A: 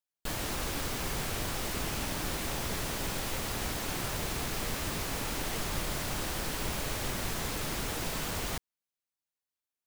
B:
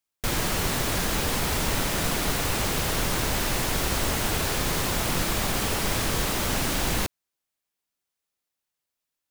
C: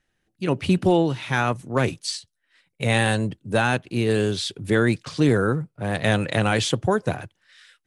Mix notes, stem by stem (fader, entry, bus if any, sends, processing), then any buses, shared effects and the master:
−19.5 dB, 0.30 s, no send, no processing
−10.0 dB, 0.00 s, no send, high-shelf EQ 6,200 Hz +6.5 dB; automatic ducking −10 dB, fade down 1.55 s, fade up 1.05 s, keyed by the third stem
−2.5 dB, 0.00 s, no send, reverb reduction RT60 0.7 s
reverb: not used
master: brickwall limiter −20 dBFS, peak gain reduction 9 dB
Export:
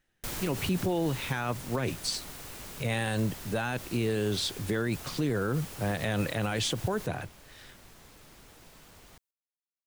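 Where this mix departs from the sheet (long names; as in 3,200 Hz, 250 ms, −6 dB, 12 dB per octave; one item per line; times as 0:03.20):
stem A: entry 0.30 s → 0.60 s
stem C: missing reverb reduction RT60 0.7 s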